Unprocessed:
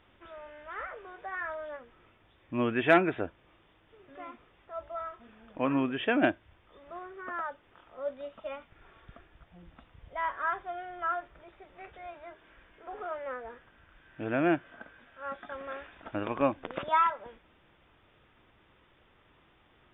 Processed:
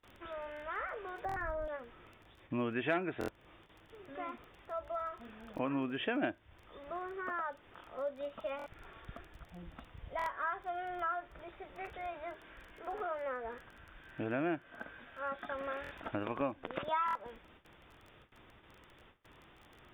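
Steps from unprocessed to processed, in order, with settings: 1.25–1.68 s: tilt EQ -4.5 dB/octave; crackle 18 per s -50 dBFS; gate with hold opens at -53 dBFS; compression 2.5:1, threshold -41 dBFS, peak gain reduction 16 dB; buffer glitch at 1.27/3.19/8.57/10.17/15.82/17.06 s, samples 1024, times 3; trim +3.5 dB

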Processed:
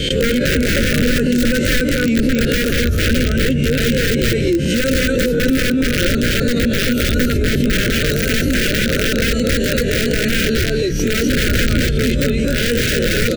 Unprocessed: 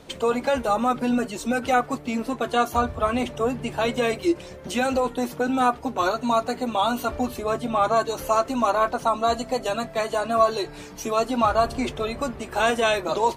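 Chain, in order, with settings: reverse spectral sustain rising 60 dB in 0.37 s; peak limiter -14 dBFS, peak gain reduction 7 dB; on a send: delay 253 ms -3 dB; on the sum: integer overflow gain 16.5 dB; elliptic band-stop 540–1500 Hz, stop band 40 dB; bass shelf 180 Hz +11.5 dB; in parallel at -3 dB: compressor with a negative ratio -28 dBFS, ratio -1; on the sum: gate with hold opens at -13 dBFS; peaking EQ 10 kHz -8 dB 2 oct; swell ahead of each attack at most 25 dB/s; trim +4.5 dB

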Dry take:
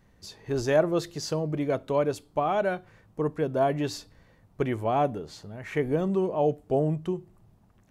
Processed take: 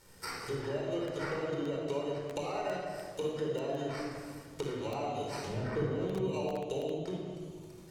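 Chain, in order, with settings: hum notches 50/100/150/200 Hz; compression 20:1, threshold -37 dBFS, peak gain reduction 21.5 dB; 5.46–5.86 s: tilt EQ -2.5 dB/octave; sample-and-hold 13×; low-pass that closes with the level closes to 1.3 kHz, closed at -35.5 dBFS; tone controls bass -9 dB, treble +14 dB; simulated room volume 2800 m³, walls mixed, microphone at 4.5 m; bit-crushed delay 327 ms, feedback 55%, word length 5-bit, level -9 dB

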